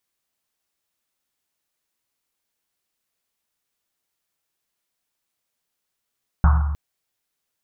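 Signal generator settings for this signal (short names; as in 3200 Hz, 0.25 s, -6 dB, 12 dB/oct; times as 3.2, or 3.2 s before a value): Risset drum length 0.31 s, pitch 73 Hz, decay 1.48 s, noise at 1100 Hz, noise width 670 Hz, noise 15%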